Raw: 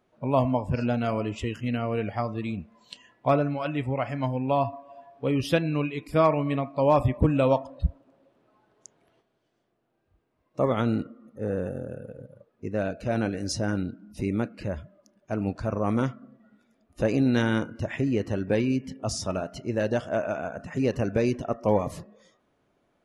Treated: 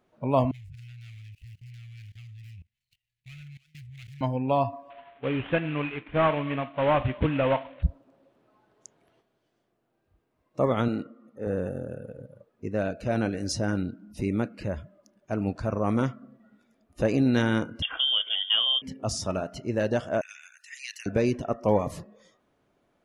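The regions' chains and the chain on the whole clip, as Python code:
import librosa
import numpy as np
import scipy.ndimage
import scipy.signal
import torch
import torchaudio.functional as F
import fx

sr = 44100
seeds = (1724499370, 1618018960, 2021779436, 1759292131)

y = fx.chain(x, sr, fx.median_filter(points=25),
    fx.ellip_bandstop(low_hz=120.0, high_hz=2100.0, order=3, stop_db=40),
    fx.level_steps(step_db=22), at=(0.51, 4.21))
y = fx.chain(y, sr, fx.cvsd(bps=16000),
    fx.tilt_shelf(db=-4.0, hz=810.0), at=(4.9, 7.83))
y = fx.chain(y, sr, fx.highpass(hz=260.0, slope=6),
    fx.high_shelf(hz=8100.0, db=-9.0), at=(10.88, 11.47))
y = fx.chain(y, sr, fx.notch_comb(f0_hz=830.0),
    fx.freq_invert(carrier_hz=3400), at=(17.82, 18.82))
y = fx.chain(y, sr, fx.cheby1_highpass(hz=1900.0, order=4),
    fx.high_shelf(hz=3500.0, db=9.0), at=(20.21, 21.06))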